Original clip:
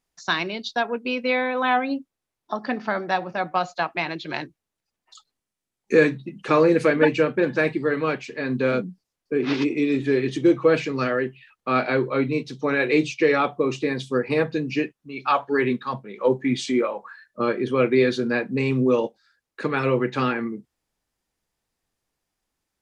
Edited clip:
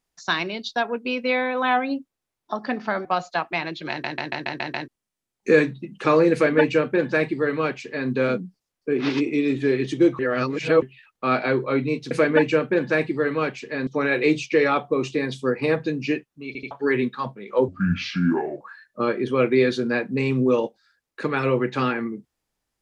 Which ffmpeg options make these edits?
-filter_complex "[0:a]asplit=18[a][b][c][d][e][f][g][h][i][j][k][l][m][n][o][p][q][r];[a]atrim=end=3.052[s];[b]atrim=start=3.488:end=4.482[t];[c]atrim=start=4.338:end=4.482[u];[d]atrim=start=4.338:end=4.482[v];[e]atrim=start=4.338:end=4.482[w];[f]atrim=start=4.338:end=4.482[x];[g]atrim=start=4.338:end=4.482[y];[h]atrim=start=4.338:end=4.482[z];[i]atrim=start=5.318:end=10.632[aa];[j]atrim=start=10.628:end=11.262,asetpts=PTS-STARTPTS,areverse[ab];[k]atrim=start=11.258:end=12.552[ac];[l]atrim=start=6.768:end=8.532[ad];[m]atrim=start=12.548:end=15.232[ae];[n]atrim=start=15.148:end=15.232[af];[o]atrim=start=15.148:end=15.232[ag];[p]atrim=start=15.388:end=16.364[ah];[q]atrim=start=16.36:end=17.01,asetpts=PTS-STARTPTS,asetrate=30870,aresample=44100[ai];[r]atrim=start=17.006[aj];[s][t]acrossfade=d=0.004:c1=hsin:c2=hsin[ak];[ak][u]acrossfade=d=0.004:c1=hsin:c2=hsin[al];[al][v]acrossfade=d=0.004:c1=hsin:c2=hsin[am];[am][w]acrossfade=d=0.004:c1=hsin:c2=hsin[an];[an][x]acrossfade=d=0.004:c1=hsin:c2=hsin[ao];[ao][y]acrossfade=d=0.004:c1=hsin:c2=hsin[ap];[ap][z]acrossfade=d=0.004:c1=hsin:c2=hsin[aq];[aq][aa]acrossfade=d=0.004:c1=hsin:c2=hsin[ar];[ar][ab]acrossfade=d=0.004:c1=hsin:c2=hsin[as];[as][ac]acrossfade=d=0.004:c1=hsin:c2=hsin[at];[at][ad]acrossfade=d=0.004:c1=hsin:c2=hsin[au];[au][ae]acrossfade=d=0.004:c1=hsin:c2=hsin[av];[av][af]acrossfade=d=0.004:c1=hsin:c2=hsin[aw];[aw][ag]acrossfade=d=0.004:c1=hsin:c2=hsin[ax];[ax][ah]acrossfade=d=0.004:c1=hsin:c2=hsin[ay];[ay][ai]acrossfade=d=0.004:c1=hsin:c2=hsin[az];[az][aj]acrossfade=d=0.004:c1=hsin:c2=hsin"

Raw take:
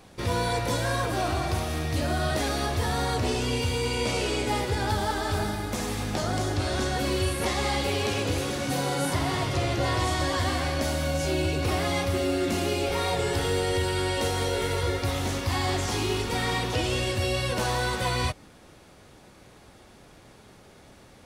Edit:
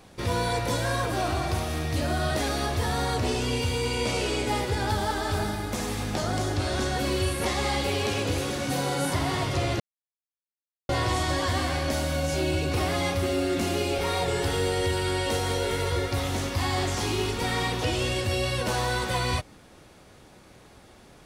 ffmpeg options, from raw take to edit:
-filter_complex "[0:a]asplit=2[a][b];[a]atrim=end=9.8,asetpts=PTS-STARTPTS,afade=t=out:st=9.796:d=0.004:c=hsin,apad=pad_dur=1.09[c];[b]atrim=start=9.8,asetpts=PTS-STARTPTS,afade=t=in:d=0.004:c=hsin[d];[c][d]concat=n=2:v=0:a=1"

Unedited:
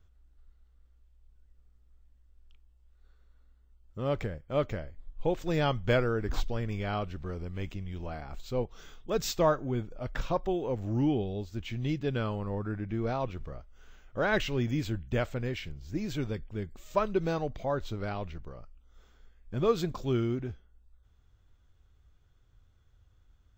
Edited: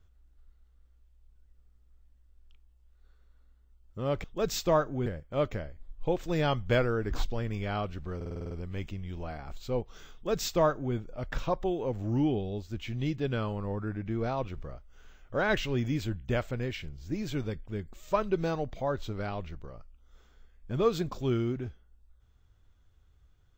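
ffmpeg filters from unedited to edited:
-filter_complex "[0:a]asplit=10[a][b][c][d][e][f][g][h][i][j];[a]atrim=end=4.242[k];[b]atrim=start=8.958:end=9.782[l];[c]atrim=start=4.238:end=7.392[m];[d]atrim=start=7.338:end=7.392[n];[e]atrim=start=7.338:end=7.392[o];[f]atrim=start=7.338:end=7.392[p];[g]atrim=start=7.338:end=7.392[q];[h]atrim=start=7.338:end=7.392[r];[i]atrim=start=7.338:end=7.392[s];[j]atrim=start=7.338[t];[k][l]acrossfade=d=0.004:c1=hsin:c2=hsin[u];[u][m]acrossfade=d=0.004:c1=hsin:c2=hsin[v];[v][n]acrossfade=d=0.004:c1=hsin:c2=hsin[w];[w][o]acrossfade=d=0.004:c1=hsin:c2=hsin[x];[x][p]acrossfade=d=0.004:c1=hsin:c2=hsin[y];[y][q]acrossfade=d=0.004:c1=hsin:c2=hsin[z];[z][r]acrossfade=d=0.004:c1=hsin:c2=hsin[aa];[aa][s]acrossfade=d=0.004:c1=hsin:c2=hsin[ab];[ab][t]acrossfade=d=0.004:c1=hsin:c2=hsin"

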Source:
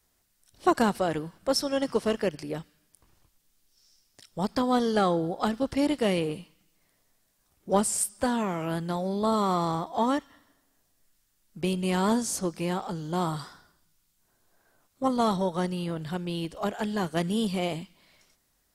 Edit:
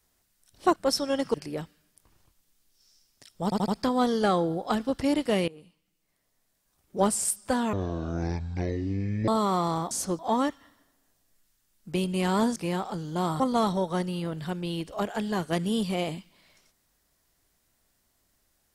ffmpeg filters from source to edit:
-filter_complex "[0:a]asplit=13[a][b][c][d][e][f][g][h][i][j][k][l][m];[a]atrim=end=0.762[n];[b]atrim=start=1.388:end=1.972[o];[c]atrim=start=2.308:end=4.492[p];[d]atrim=start=4.408:end=4.492[q];[e]atrim=start=4.408:end=4.492[r];[f]atrim=start=4.408:end=6.21,asetpts=PTS-STARTPTS,afade=t=out:st=1.798:d=0.004:c=hsin:silence=0.0891251[s];[g]atrim=start=6.21:end=8.464,asetpts=PTS-STARTPTS,afade=t=in:d=1.61:silence=0.0891251[t];[h]atrim=start=8.46:end=9.25,asetpts=PTS-STARTPTS,asetrate=22491,aresample=44100[u];[i]atrim=start=9.246:end=9.882[v];[j]atrim=start=12.248:end=12.532[w];[k]atrim=start=9.878:end=12.252[x];[l]atrim=start=12.528:end=13.372[y];[m]atrim=start=15.038[z];[n][o]acrossfade=d=0.004:c1=hsin:c2=hsin[aa];[aa][p]acrossfade=d=0.004:c1=hsin:c2=hsin[ab];[ab][q]acrossfade=d=0.004:c1=hsin:c2=hsin[ac];[ac][r]acrossfade=d=0.004:c1=hsin:c2=hsin[ad];[s][t]concat=n=2:v=0:a=1[ae];[ad][ae]acrossfade=d=0.004:c1=hsin:c2=hsin[af];[af][u]acrossfade=d=0.004:c1=hsin:c2=hsin[ag];[ag][v]acrossfade=d=0.004:c1=hsin:c2=hsin[ah];[ah][w]acrossfade=d=0.004:c1=hsin:c2=hsin[ai];[ai][x]acrossfade=d=0.004:c1=hsin:c2=hsin[aj];[aj][y]acrossfade=d=0.004:c1=hsin:c2=hsin[ak];[ak][z]acrossfade=d=0.004:c1=hsin:c2=hsin"

